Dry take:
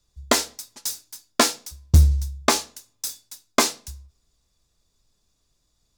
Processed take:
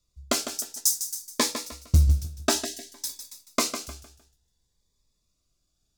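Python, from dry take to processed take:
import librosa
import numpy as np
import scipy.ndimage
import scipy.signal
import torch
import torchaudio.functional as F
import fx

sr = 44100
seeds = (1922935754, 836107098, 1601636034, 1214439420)

y = fx.high_shelf_res(x, sr, hz=4600.0, db=10.0, q=1.5, at=(0.55, 1.27))
y = fx.comb(y, sr, ms=3.1, depth=0.82, at=(2.07, 3.26))
y = fx.echo_feedback(y, sr, ms=153, feedback_pct=32, wet_db=-9.5)
y = fx.spec_box(y, sr, start_s=2.64, length_s=0.29, low_hz=750.0, high_hz=1600.0, gain_db=-26)
y = fx.notch_cascade(y, sr, direction='rising', hz=0.57)
y = y * librosa.db_to_amplitude(-5.0)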